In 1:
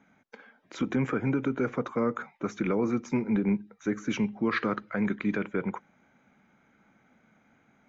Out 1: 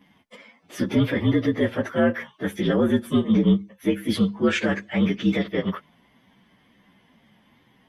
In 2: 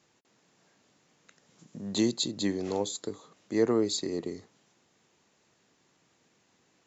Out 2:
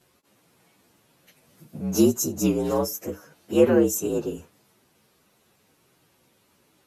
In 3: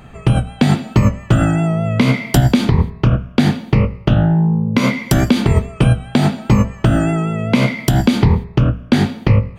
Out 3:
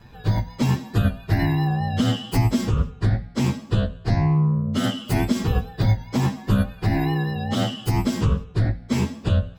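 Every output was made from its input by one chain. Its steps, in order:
inharmonic rescaling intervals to 117%; wow and flutter 17 cents; match loudness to -23 LUFS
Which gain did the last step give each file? +9.0, +9.0, -5.0 dB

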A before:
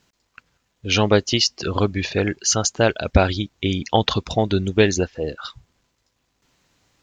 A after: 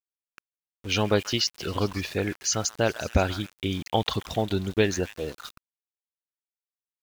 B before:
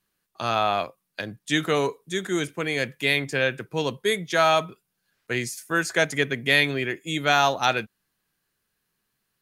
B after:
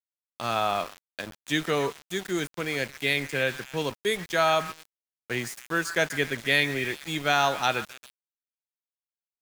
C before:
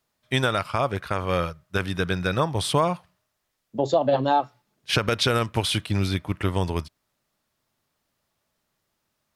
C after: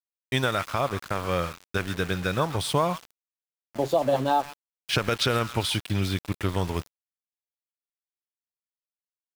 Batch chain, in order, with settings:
delay with a stepping band-pass 0.134 s, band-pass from 1400 Hz, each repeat 0.7 oct, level -9.5 dB; sample gate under -32.5 dBFS; match loudness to -27 LUFS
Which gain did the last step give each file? -6.5, -3.0, -2.5 dB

